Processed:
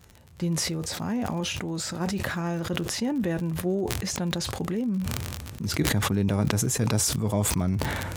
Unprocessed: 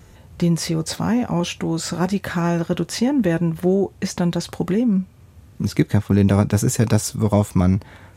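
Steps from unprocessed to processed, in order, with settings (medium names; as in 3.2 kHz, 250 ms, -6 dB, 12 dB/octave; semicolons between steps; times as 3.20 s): crackle 43 per s -26 dBFS; decay stretcher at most 24 dB/s; trim -9.5 dB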